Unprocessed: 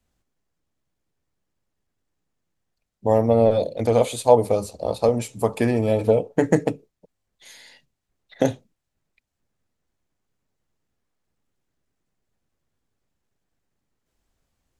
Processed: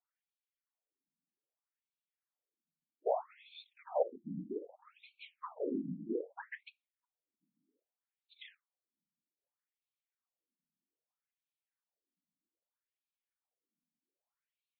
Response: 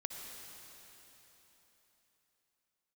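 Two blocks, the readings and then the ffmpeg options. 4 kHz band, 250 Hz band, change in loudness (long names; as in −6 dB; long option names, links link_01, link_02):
−18.0 dB, −19.5 dB, −19.0 dB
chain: -af "afftfilt=real='hypot(re,im)*cos(2*PI*random(0))':imag='hypot(re,im)*sin(2*PI*random(1))':win_size=512:overlap=0.75,afftfilt=real='re*between(b*sr/1024,210*pow(3200/210,0.5+0.5*sin(2*PI*0.63*pts/sr))/1.41,210*pow(3200/210,0.5+0.5*sin(2*PI*0.63*pts/sr))*1.41)':imag='im*between(b*sr/1024,210*pow(3200/210,0.5+0.5*sin(2*PI*0.63*pts/sr))/1.41,210*pow(3200/210,0.5+0.5*sin(2*PI*0.63*pts/sr))*1.41)':win_size=1024:overlap=0.75,volume=-5dB"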